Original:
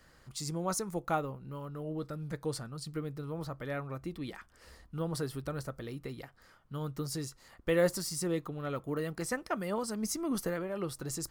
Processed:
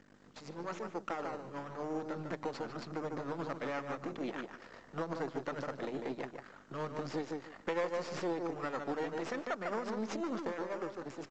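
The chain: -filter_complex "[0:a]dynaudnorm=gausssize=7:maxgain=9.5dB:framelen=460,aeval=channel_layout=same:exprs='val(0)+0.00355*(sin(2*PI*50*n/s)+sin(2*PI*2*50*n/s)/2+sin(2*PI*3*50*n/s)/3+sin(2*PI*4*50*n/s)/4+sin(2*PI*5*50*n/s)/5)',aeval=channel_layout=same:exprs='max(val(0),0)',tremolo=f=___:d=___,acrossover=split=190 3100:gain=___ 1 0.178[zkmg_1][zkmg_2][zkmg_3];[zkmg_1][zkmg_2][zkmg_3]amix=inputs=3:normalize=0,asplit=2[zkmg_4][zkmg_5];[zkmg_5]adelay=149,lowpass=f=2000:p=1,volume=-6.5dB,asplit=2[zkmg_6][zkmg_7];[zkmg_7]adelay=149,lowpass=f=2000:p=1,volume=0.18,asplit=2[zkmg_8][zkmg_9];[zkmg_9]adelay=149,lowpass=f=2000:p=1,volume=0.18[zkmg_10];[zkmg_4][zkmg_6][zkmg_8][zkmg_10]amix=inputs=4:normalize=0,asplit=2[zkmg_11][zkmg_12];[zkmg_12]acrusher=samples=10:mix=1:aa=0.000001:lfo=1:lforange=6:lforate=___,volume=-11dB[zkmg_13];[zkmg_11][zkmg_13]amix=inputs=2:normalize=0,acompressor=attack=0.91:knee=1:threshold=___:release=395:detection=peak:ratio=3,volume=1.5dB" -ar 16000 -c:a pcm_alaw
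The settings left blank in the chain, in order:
8.2, 0.54, 0.0794, 0.9, -33dB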